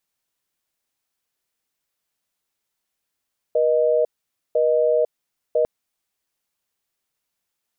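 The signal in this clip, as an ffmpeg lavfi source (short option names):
-f lavfi -i "aevalsrc='0.126*(sin(2*PI*480*t)+sin(2*PI*620*t))*clip(min(mod(t,1),0.5-mod(t,1))/0.005,0,1)':d=2.1:s=44100"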